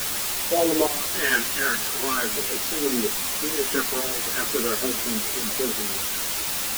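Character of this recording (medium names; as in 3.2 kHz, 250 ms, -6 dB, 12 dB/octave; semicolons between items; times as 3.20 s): phasing stages 2, 0.43 Hz, lowest notch 550–1100 Hz; random-step tremolo, depth 85%; a quantiser's noise floor 6-bit, dither triangular; a shimmering, thickened sound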